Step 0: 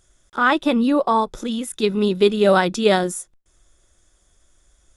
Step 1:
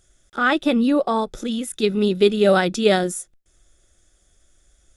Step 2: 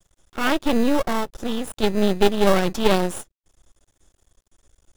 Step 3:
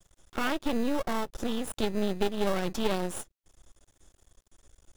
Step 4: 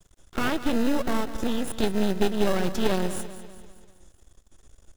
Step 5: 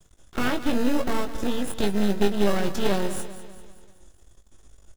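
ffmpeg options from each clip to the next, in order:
ffmpeg -i in.wav -af "equalizer=frequency=1000:width=5:gain=-12.5" out.wav
ffmpeg -i in.wav -filter_complex "[0:a]asplit=2[link_01][link_02];[link_02]acrusher=samples=20:mix=1:aa=0.000001,volume=-5dB[link_03];[link_01][link_03]amix=inputs=2:normalize=0,aeval=exprs='max(val(0),0)':channel_layout=same,volume=-1dB" out.wav
ffmpeg -i in.wav -af "acompressor=threshold=-28dB:ratio=2.5" out.wav
ffmpeg -i in.wav -filter_complex "[0:a]asplit=2[link_01][link_02];[link_02]acrusher=samples=39:mix=1:aa=0.000001,volume=-7dB[link_03];[link_01][link_03]amix=inputs=2:normalize=0,aecho=1:1:196|392|588|784|980:0.224|0.114|0.0582|0.0297|0.0151,volume=2dB" out.wav
ffmpeg -i in.wav -filter_complex "[0:a]asplit=2[link_01][link_02];[link_02]adelay=20,volume=-7dB[link_03];[link_01][link_03]amix=inputs=2:normalize=0" out.wav

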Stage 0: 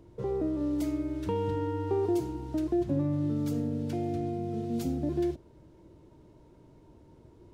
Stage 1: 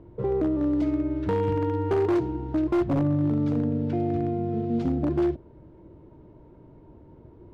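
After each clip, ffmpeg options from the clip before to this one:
ffmpeg -i in.wav -af "adynamicsmooth=sensitivity=7:basefreq=2500,aemphasis=mode=reproduction:type=50kf,aeval=exprs='0.0668*(abs(mod(val(0)/0.0668+3,4)-2)-1)':channel_layout=same,volume=6dB" out.wav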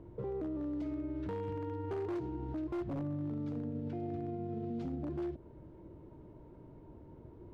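ffmpeg -i in.wav -af "alimiter=level_in=4.5dB:limit=-24dB:level=0:latency=1:release=137,volume=-4.5dB,volume=-3.5dB" out.wav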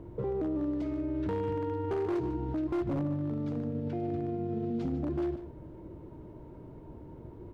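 ffmpeg -i in.wav -af "aecho=1:1:148:0.237,volume=6dB" out.wav

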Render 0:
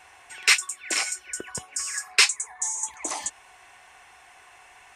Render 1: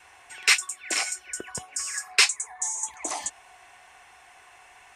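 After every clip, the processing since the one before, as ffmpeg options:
ffmpeg -i in.wav -af "adynamicequalizer=threshold=0.00141:dfrequency=710:dqfactor=7.2:tfrequency=710:tqfactor=7.2:attack=5:release=100:ratio=0.375:range=3:mode=boostabove:tftype=bell,volume=-1dB" out.wav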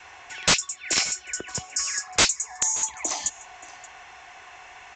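ffmpeg -i in.wav -filter_complex "[0:a]acrossover=split=190|3000[link_01][link_02][link_03];[link_02]acompressor=threshold=-46dB:ratio=2[link_04];[link_01][link_04][link_03]amix=inputs=3:normalize=0,aresample=16000,aeval=exprs='(mod(7.94*val(0)+1,2)-1)/7.94':channel_layout=same,aresample=44100,aecho=1:1:578:0.0891,volume=7dB" out.wav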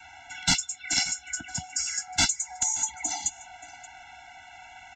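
ffmpeg -i in.wav -filter_complex "[0:a]asplit=2[link_01][link_02];[link_02]adelay=12,volume=-13.5dB[link_03];[link_01][link_03]amix=inputs=2:normalize=0,acrossover=split=350|660|2800[link_04][link_05][link_06][link_07];[link_06]asoftclip=type=hard:threshold=-24dB[link_08];[link_04][link_05][link_08][link_07]amix=inputs=4:normalize=0,afftfilt=real='re*eq(mod(floor(b*sr/1024/330),2),0)':imag='im*eq(mod(floor(b*sr/1024/330),2),0)':win_size=1024:overlap=0.75" out.wav

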